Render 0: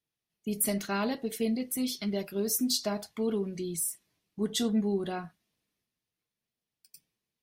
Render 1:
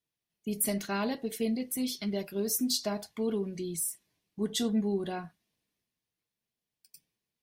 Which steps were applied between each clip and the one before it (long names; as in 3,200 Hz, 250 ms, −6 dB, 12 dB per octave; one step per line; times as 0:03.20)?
notch filter 1,300 Hz, Q 12
level −1 dB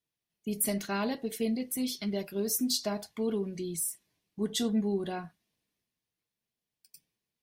no processing that can be heard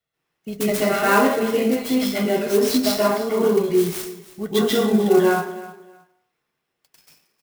repeating echo 313 ms, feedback 22%, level −17 dB
convolution reverb RT60 0.60 s, pre-delay 127 ms, DRR −9 dB
converter with an unsteady clock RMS 0.027 ms